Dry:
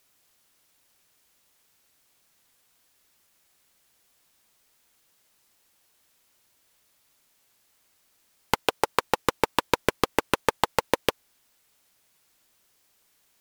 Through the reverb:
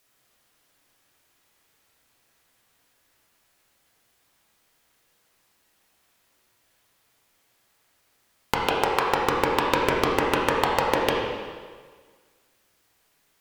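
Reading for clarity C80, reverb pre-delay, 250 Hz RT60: 2.0 dB, 8 ms, 1.5 s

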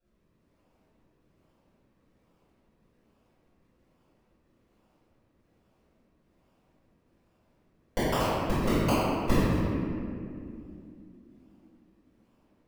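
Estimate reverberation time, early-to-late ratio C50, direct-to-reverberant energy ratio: 2.6 s, -5.5 dB, -18.5 dB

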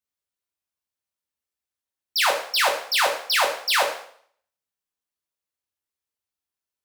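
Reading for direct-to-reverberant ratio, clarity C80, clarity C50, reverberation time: -0.5 dB, 11.0 dB, 7.0 dB, 0.60 s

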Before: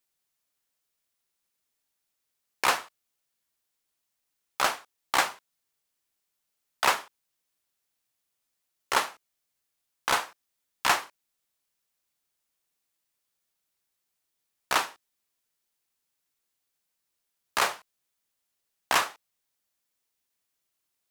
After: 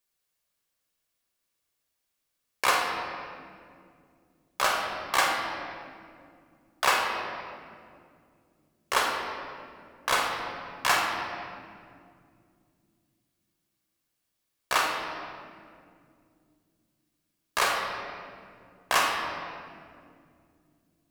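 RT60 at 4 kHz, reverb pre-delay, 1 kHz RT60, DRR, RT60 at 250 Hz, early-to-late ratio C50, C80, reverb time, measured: 1.4 s, 30 ms, 2.0 s, -0.5 dB, 3.8 s, 2.0 dB, 3.5 dB, 2.4 s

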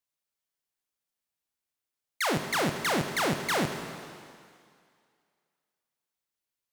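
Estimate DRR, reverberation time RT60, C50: 6.0 dB, 2.2 s, 7.0 dB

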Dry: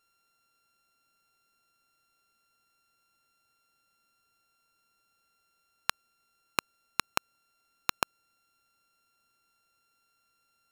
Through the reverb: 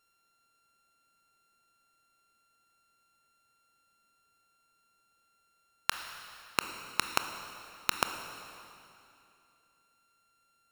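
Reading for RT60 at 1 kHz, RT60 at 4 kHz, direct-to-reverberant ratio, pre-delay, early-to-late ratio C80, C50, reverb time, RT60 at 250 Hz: 2.7 s, 2.5 s, 7.0 dB, 22 ms, 8.5 dB, 8.0 dB, 2.7 s, 2.9 s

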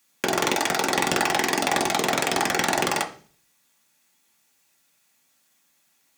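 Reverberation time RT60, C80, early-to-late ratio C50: 0.45 s, 17.5 dB, 13.5 dB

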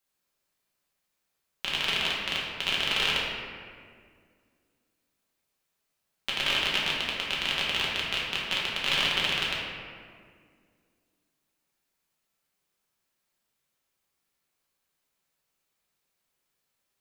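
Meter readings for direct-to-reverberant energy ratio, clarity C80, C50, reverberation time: -6.0 dB, 2.0 dB, -0.5 dB, 2.0 s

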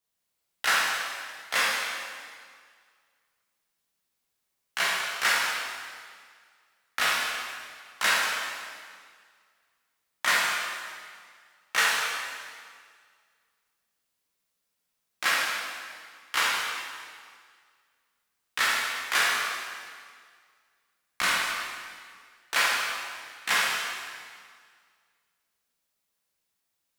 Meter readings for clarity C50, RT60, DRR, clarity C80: -1.5 dB, 1.9 s, -6.0 dB, 0.5 dB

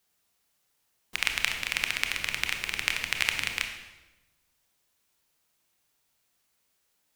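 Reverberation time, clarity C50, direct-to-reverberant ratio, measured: 1.1 s, 6.5 dB, 4.5 dB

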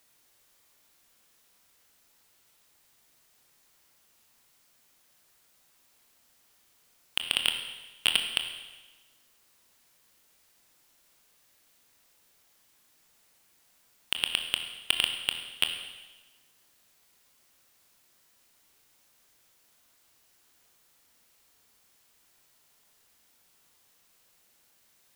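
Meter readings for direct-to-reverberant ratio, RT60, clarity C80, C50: 5.0 dB, 1.2 s, 8.5 dB, 7.0 dB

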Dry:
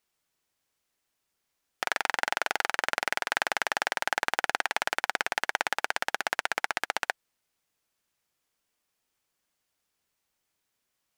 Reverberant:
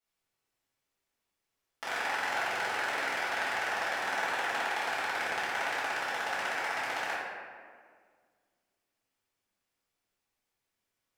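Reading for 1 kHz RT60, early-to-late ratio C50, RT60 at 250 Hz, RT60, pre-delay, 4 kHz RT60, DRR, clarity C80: 1.7 s, -2.0 dB, 2.3 s, 1.8 s, 4 ms, 1.0 s, -12.5 dB, 0.5 dB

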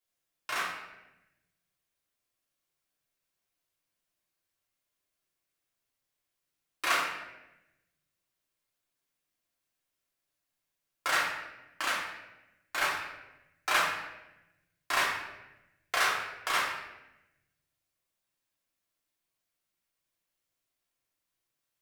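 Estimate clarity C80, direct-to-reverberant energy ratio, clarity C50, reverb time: 5.5 dB, -6.0 dB, 3.0 dB, 1.0 s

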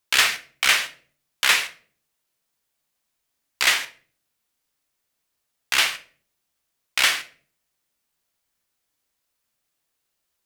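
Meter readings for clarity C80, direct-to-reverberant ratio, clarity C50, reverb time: 20.0 dB, 7.0 dB, 14.5 dB, 0.45 s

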